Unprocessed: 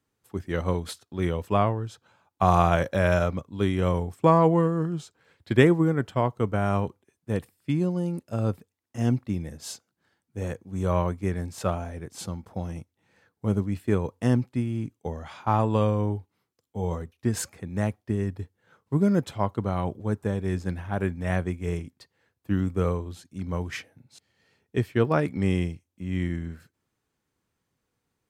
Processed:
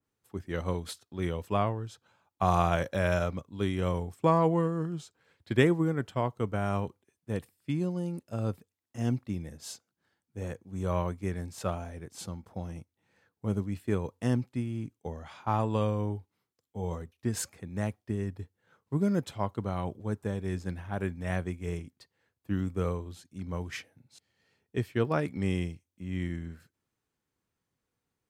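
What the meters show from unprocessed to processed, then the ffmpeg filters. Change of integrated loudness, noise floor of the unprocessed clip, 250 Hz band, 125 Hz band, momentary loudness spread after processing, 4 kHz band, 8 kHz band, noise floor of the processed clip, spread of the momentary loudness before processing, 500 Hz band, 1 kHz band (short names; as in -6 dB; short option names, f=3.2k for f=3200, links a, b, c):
-5.5 dB, -81 dBFS, -5.5 dB, -5.5 dB, 14 LU, -3.5 dB, -3.0 dB, under -85 dBFS, 14 LU, -5.5 dB, -5.5 dB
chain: -af "adynamicequalizer=threshold=0.0112:dfrequency=2300:dqfactor=0.7:tfrequency=2300:tqfactor=0.7:attack=5:release=100:ratio=0.375:range=1.5:mode=boostabove:tftype=highshelf,volume=-5.5dB"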